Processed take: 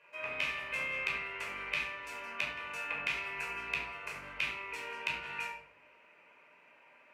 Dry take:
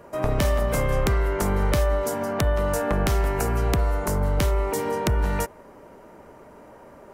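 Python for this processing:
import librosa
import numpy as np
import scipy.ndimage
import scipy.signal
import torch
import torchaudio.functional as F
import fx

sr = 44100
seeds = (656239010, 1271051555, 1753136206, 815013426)

y = fx.bandpass_q(x, sr, hz=2500.0, q=9.9)
y = fx.room_shoebox(y, sr, seeds[0], volume_m3=910.0, walls='furnished', distance_m=5.1)
y = y * 10.0 ** (5.0 / 20.0)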